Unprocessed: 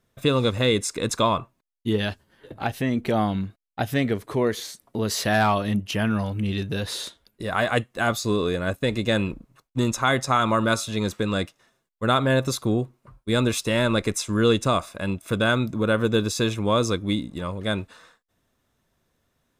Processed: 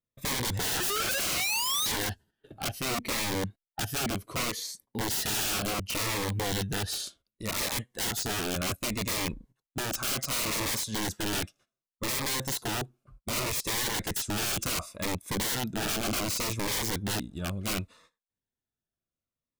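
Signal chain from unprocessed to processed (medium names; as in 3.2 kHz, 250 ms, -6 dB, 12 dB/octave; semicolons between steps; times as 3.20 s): gate -50 dBFS, range -16 dB; spectral noise reduction 7 dB; painted sound rise, 0.59–1.92 s, 270–1400 Hz -24 dBFS; integer overflow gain 24 dB; Shepard-style phaser falling 0.67 Hz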